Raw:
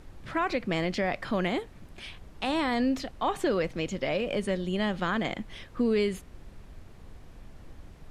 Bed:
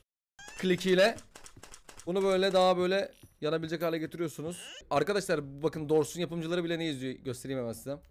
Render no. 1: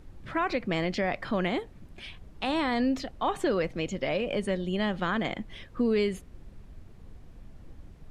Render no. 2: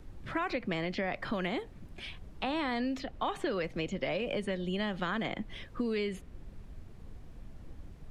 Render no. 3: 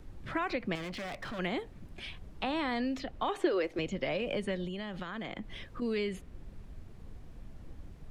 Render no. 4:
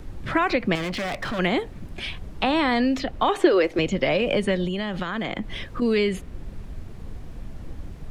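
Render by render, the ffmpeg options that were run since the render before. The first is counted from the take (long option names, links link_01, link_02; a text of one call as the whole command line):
ffmpeg -i in.wav -af "afftdn=noise_reduction=6:noise_floor=-50" out.wav
ffmpeg -i in.wav -filter_complex "[0:a]acrossover=split=320|780|4100[link_01][link_02][link_03][link_04];[link_04]alimiter=level_in=17.5dB:limit=-24dB:level=0:latency=1:release=470,volume=-17.5dB[link_05];[link_01][link_02][link_03][link_05]amix=inputs=4:normalize=0,acrossover=split=1700|4500[link_06][link_07][link_08];[link_06]acompressor=threshold=-31dB:ratio=4[link_09];[link_07]acompressor=threshold=-39dB:ratio=4[link_10];[link_08]acompressor=threshold=-54dB:ratio=4[link_11];[link_09][link_10][link_11]amix=inputs=3:normalize=0" out.wav
ffmpeg -i in.wav -filter_complex "[0:a]asettb=1/sr,asplit=3[link_01][link_02][link_03];[link_01]atrim=end=0.754[link_04];[link_02]atrim=start=0.75:end=1.39,asetpts=PTS-STARTPTS,afade=type=in:duration=0.004:curve=qsin,afade=type=out:start_time=0.636:duration=0.004:curve=qsin,asoftclip=type=hard:threshold=-37dB[link_05];[link_03]atrim=start=1.386[link_06];[link_04][link_05]acrossfade=duration=0.004:curve1=hsin:curve2=qsin[link_07];[link_07][link_06]acrossfade=duration=0.004:curve1=qsin:curve2=hsin,asettb=1/sr,asplit=3[link_08][link_09][link_10];[link_08]atrim=end=3.294[link_11];[link_09]atrim=start=3.29:end=3.79,asetpts=PTS-STARTPTS,afade=type=in:duration=0.004:curve=qsin,afade=type=out:start_time=0.496:duration=0.004:curve=qsin,lowshelf=frequency=260:width_type=q:width=3:gain=-8.5[link_12];[link_10]atrim=start=3.786[link_13];[link_11][link_12]acrossfade=duration=0.004:curve1=hsin:curve2=qsin[link_14];[link_14][link_13]acrossfade=duration=0.004:curve1=qsin:curve2=hsin,asettb=1/sr,asplit=3[link_15][link_16][link_17];[link_15]atrim=end=4.664[link_18];[link_16]atrim=start=4.66:end=5.82,asetpts=PTS-STARTPTS,afade=type=in:duration=0.004:curve=qsin,afade=type=out:start_time=1.156:duration=0.004:curve=qsin,acompressor=threshold=-35dB:ratio=6:attack=3.2:release=140:knee=1:detection=peak[link_19];[link_17]atrim=start=5.816[link_20];[link_18][link_19]acrossfade=duration=0.004:curve1=hsin:curve2=qsin[link_21];[link_21][link_20]acrossfade=duration=0.004:curve1=qsin:curve2=hsin" out.wav
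ffmpeg -i in.wav -af "volume=11.5dB" out.wav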